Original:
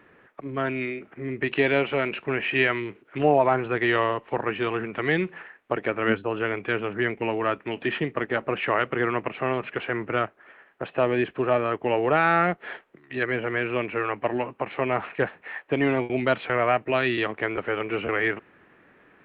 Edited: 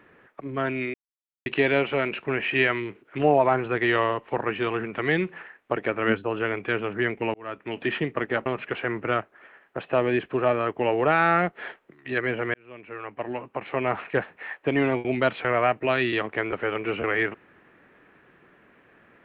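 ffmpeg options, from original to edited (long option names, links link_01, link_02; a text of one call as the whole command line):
ffmpeg -i in.wav -filter_complex "[0:a]asplit=6[link_01][link_02][link_03][link_04][link_05][link_06];[link_01]atrim=end=0.94,asetpts=PTS-STARTPTS,afade=type=out:start_time=0.936:duration=0.004:curve=hsin[link_07];[link_02]atrim=start=0.94:end=1.46,asetpts=PTS-STARTPTS,volume=0[link_08];[link_03]atrim=start=1.46:end=7.34,asetpts=PTS-STARTPTS,afade=type=in:duration=0.004:curve=hsin,afade=type=out:start_time=5.876:duration=0.004:curve=hsin[link_09];[link_04]atrim=start=7.34:end=8.462,asetpts=PTS-STARTPTS,afade=type=in:duration=0.45[link_10];[link_05]atrim=start=9.508:end=13.59,asetpts=PTS-STARTPTS,afade=type=out:start_time=4.078:duration=0.004:curve=hsin[link_11];[link_06]atrim=start=13.59,asetpts=PTS-STARTPTS,afade=type=in:duration=1.39[link_12];[link_07][link_08][link_09][link_10]concat=n=4:v=0:a=1[link_13];[link_11][link_12]concat=n=2:v=0:a=1[link_14];[link_13][link_14]acrossfade=duration=0.004:curve1=hsin:curve2=hsin" out.wav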